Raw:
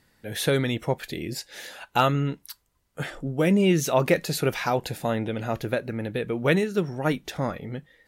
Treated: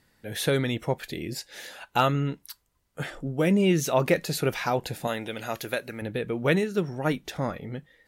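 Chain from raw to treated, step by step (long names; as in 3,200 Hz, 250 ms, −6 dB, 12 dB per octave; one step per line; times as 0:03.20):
0:05.07–0:06.02: spectral tilt +3 dB per octave
level −1.5 dB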